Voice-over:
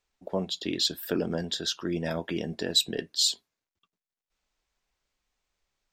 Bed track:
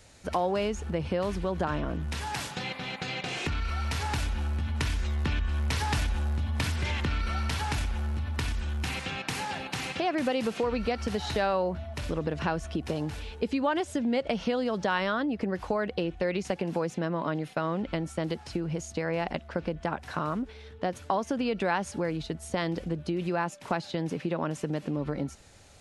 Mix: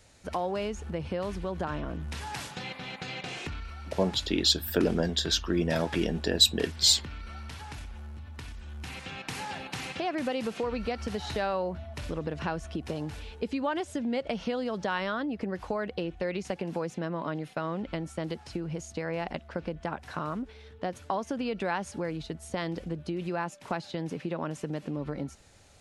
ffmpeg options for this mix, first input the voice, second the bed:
ffmpeg -i stem1.wav -i stem2.wav -filter_complex "[0:a]adelay=3650,volume=3dB[link_01];[1:a]volume=5dB,afade=type=out:start_time=3.28:duration=0.47:silence=0.398107,afade=type=in:start_time=8.62:duration=0.85:silence=0.375837[link_02];[link_01][link_02]amix=inputs=2:normalize=0" out.wav

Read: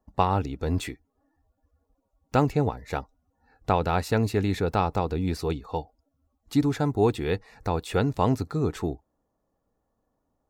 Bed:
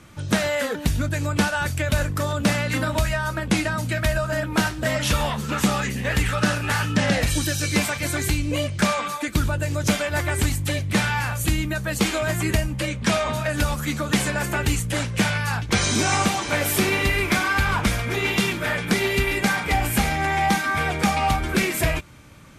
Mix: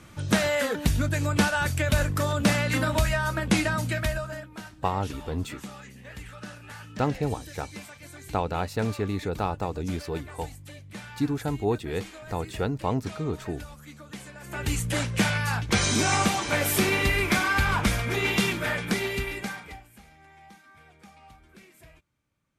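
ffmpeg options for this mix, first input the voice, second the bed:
ffmpeg -i stem1.wav -i stem2.wav -filter_complex "[0:a]adelay=4650,volume=-4dB[link_01];[1:a]volume=16dB,afade=type=out:start_time=3.76:duration=0.74:silence=0.11885,afade=type=in:start_time=14.42:duration=0.43:silence=0.133352,afade=type=out:start_time=18.53:duration=1.31:silence=0.0375837[link_02];[link_01][link_02]amix=inputs=2:normalize=0" out.wav

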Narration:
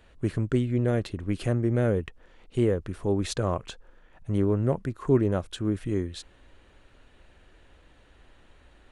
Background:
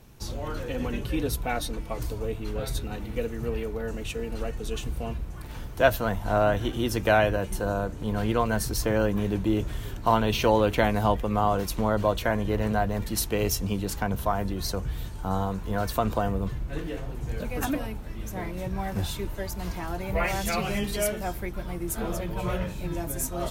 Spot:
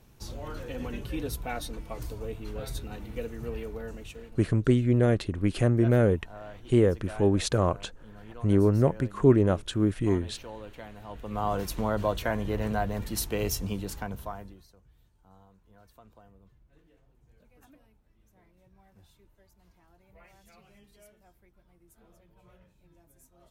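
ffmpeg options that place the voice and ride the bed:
ffmpeg -i stem1.wav -i stem2.wav -filter_complex "[0:a]adelay=4150,volume=2.5dB[link_01];[1:a]volume=12.5dB,afade=type=out:start_time=3.77:duration=0.64:silence=0.158489,afade=type=in:start_time=11.08:duration=0.49:silence=0.125893,afade=type=out:start_time=13.64:duration=1.02:silence=0.0473151[link_02];[link_01][link_02]amix=inputs=2:normalize=0" out.wav

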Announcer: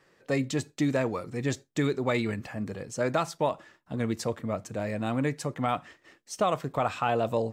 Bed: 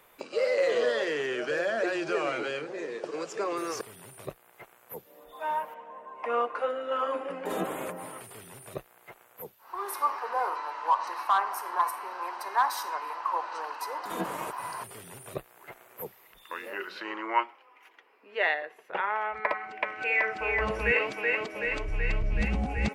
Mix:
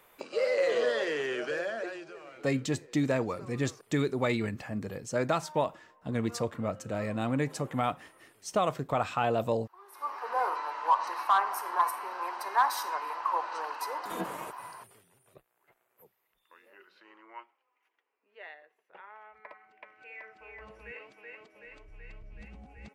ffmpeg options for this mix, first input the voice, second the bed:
ffmpeg -i stem1.wav -i stem2.wav -filter_complex "[0:a]adelay=2150,volume=-1.5dB[link_01];[1:a]volume=17.5dB,afade=type=out:start_time=1.36:duration=0.79:silence=0.133352,afade=type=in:start_time=9.91:duration=0.49:silence=0.112202,afade=type=out:start_time=13.88:duration=1.2:silence=0.0944061[link_02];[link_01][link_02]amix=inputs=2:normalize=0" out.wav

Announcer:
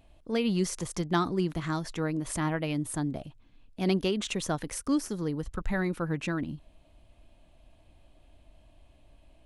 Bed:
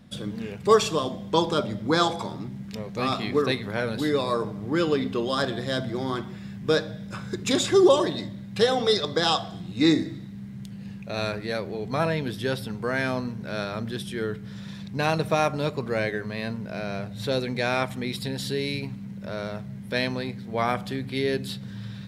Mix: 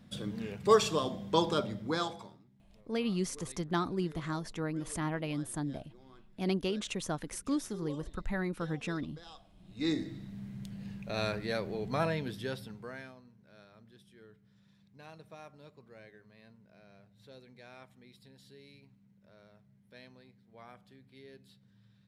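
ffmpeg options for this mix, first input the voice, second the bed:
ffmpeg -i stem1.wav -i stem2.wav -filter_complex "[0:a]adelay=2600,volume=-5dB[link_01];[1:a]volume=19dB,afade=type=out:start_time=1.49:duration=0.94:silence=0.0630957,afade=type=in:start_time=9.55:duration=0.82:silence=0.0595662,afade=type=out:start_time=11.83:duration=1.32:silence=0.0749894[link_02];[link_01][link_02]amix=inputs=2:normalize=0" out.wav

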